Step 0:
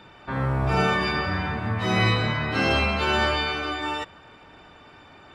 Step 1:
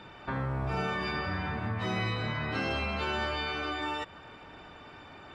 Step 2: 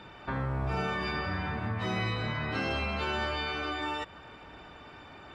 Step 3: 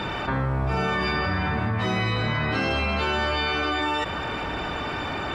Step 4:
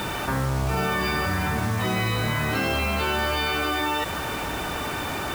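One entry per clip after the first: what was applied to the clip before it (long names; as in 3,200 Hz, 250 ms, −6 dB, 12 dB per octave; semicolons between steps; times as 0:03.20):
high-shelf EQ 8,600 Hz −7.5 dB; downward compressor 3 to 1, threshold −32 dBFS, peak gain reduction 11 dB
parametric band 60 Hz +7.5 dB 0.21 octaves
envelope flattener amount 70%; level +6 dB
bit reduction 6 bits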